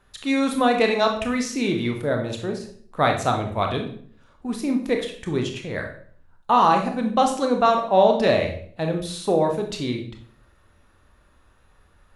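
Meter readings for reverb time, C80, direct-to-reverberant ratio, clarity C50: 0.55 s, 11.5 dB, 3.0 dB, 7.5 dB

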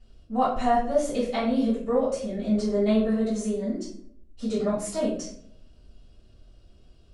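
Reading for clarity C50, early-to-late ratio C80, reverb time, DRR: 4.5 dB, 8.0 dB, 0.65 s, -13.5 dB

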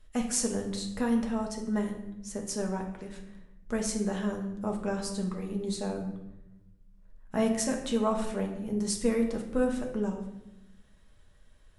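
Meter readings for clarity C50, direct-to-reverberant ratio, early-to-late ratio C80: 7.0 dB, 1.0 dB, 9.5 dB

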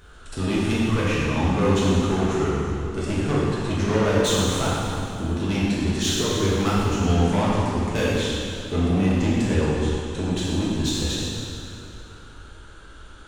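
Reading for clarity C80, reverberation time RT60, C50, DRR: -1.0 dB, 2.7 s, -3.0 dB, -8.0 dB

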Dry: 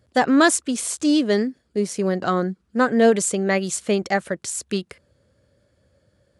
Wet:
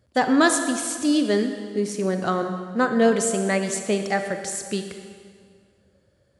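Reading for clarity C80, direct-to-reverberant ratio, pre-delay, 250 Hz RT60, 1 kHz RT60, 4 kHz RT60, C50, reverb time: 8.0 dB, 6.0 dB, 31 ms, 2.0 s, 2.0 s, 1.7 s, 6.5 dB, 2.0 s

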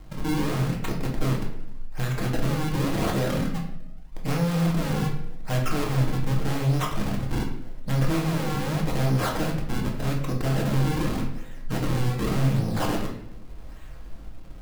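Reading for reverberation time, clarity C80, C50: 0.80 s, 9.0 dB, 6.0 dB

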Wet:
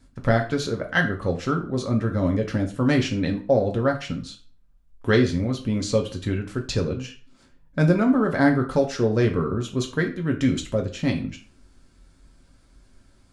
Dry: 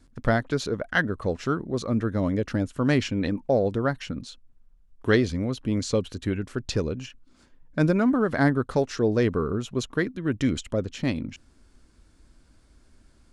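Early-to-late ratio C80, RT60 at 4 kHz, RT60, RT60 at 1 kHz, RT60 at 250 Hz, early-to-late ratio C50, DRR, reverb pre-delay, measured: 16.5 dB, 0.35 s, 0.40 s, 0.40 s, 0.40 s, 11.0 dB, 2.0 dB, 3 ms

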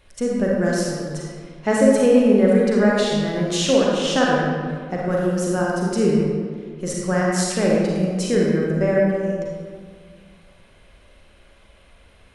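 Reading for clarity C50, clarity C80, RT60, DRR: -2.0 dB, 0.5 dB, 1.9 s, -4.0 dB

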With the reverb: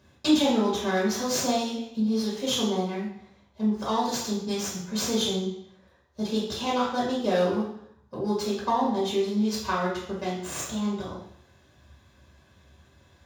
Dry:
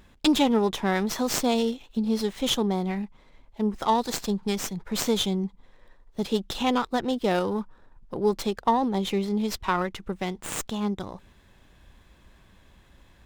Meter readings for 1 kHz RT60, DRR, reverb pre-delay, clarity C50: 0.70 s, -7.0 dB, 3 ms, 3.0 dB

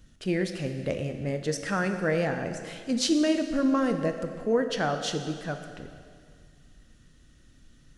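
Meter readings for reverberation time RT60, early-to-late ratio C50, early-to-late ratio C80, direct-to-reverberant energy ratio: 2.1 s, 7.5 dB, 8.5 dB, 6.0 dB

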